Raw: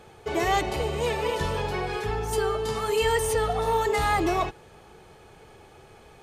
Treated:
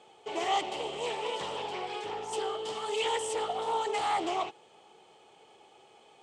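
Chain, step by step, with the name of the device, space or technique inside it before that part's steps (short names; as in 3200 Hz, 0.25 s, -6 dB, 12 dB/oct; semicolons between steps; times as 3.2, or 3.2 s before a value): full-range speaker at full volume (Doppler distortion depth 0.42 ms; speaker cabinet 290–8700 Hz, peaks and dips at 810 Hz +5 dB, 1600 Hz -8 dB, 3100 Hz +9 dB, 7900 Hz +7 dB); gain -7.5 dB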